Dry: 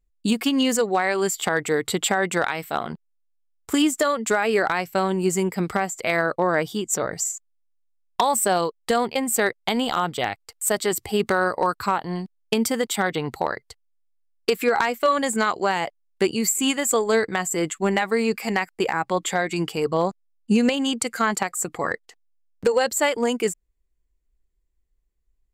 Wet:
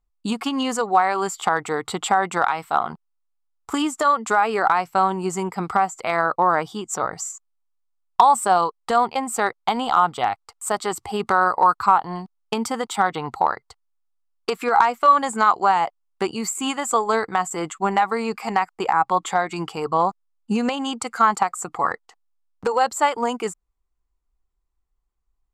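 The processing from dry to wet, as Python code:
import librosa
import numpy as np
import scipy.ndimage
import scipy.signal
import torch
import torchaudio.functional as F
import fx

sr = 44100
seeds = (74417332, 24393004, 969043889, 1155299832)

y = scipy.signal.sosfilt(scipy.signal.butter(2, 9500.0, 'lowpass', fs=sr, output='sos'), x)
y = fx.band_shelf(y, sr, hz=1000.0, db=11.5, octaves=1.1)
y = y * librosa.db_to_amplitude(-3.5)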